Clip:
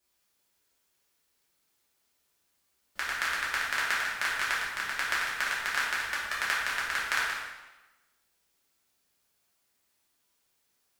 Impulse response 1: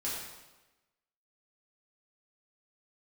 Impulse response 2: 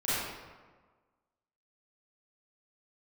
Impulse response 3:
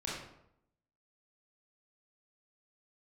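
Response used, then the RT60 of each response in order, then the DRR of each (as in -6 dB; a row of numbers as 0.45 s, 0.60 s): 1; 1.1 s, 1.4 s, 0.75 s; -8.0 dB, -13.0 dB, -6.0 dB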